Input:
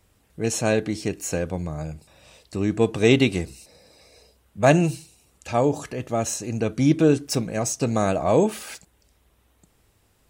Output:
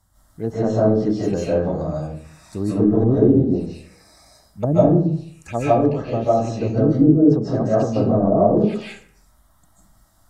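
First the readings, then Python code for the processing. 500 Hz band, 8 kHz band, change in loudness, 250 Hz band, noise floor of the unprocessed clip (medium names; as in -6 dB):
+4.5 dB, under -10 dB, +4.0 dB, +6.0 dB, -64 dBFS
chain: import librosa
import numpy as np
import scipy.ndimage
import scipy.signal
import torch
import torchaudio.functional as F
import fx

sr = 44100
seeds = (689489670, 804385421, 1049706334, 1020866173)

y = fx.env_lowpass_down(x, sr, base_hz=340.0, full_db=-16.5)
y = fx.env_phaser(y, sr, low_hz=420.0, high_hz=2400.0, full_db=-25.5)
y = fx.rev_freeverb(y, sr, rt60_s=0.57, hf_ratio=0.65, predelay_ms=110, drr_db=-8.0)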